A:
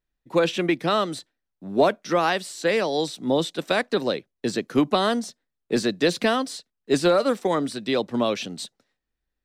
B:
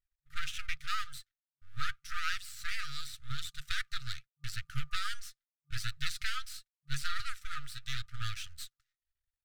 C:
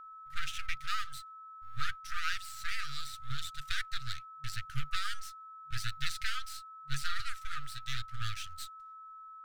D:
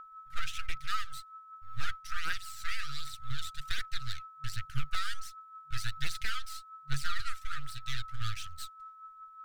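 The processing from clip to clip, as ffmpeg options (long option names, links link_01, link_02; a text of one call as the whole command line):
ffmpeg -i in.wav -af "aeval=exprs='max(val(0),0)':channel_layout=same,afftfilt=real='re*(1-between(b*sr/4096,150,1200))':imag='im*(1-between(b*sr/4096,150,1200))':win_size=4096:overlap=0.75,flanger=delay=0.6:depth=3:regen=63:speed=0.84:shape=triangular,volume=-1.5dB" out.wav
ffmpeg -i in.wav -af "aeval=exprs='val(0)+0.00447*sin(2*PI*1300*n/s)':channel_layout=same" out.wav
ffmpeg -i in.wav -af "asoftclip=type=hard:threshold=-22.5dB,aphaser=in_gain=1:out_gain=1:delay=1.6:decay=0.43:speed=1.3:type=triangular,volume=-1dB" out.wav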